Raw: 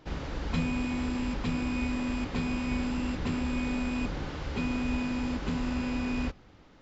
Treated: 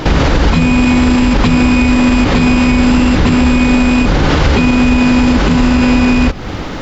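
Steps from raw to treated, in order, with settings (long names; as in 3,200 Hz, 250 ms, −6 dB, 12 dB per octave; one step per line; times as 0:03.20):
downward compressor 4 to 1, threshold −39 dBFS, peak gain reduction 12.5 dB
boost into a limiter +36 dB
level −1 dB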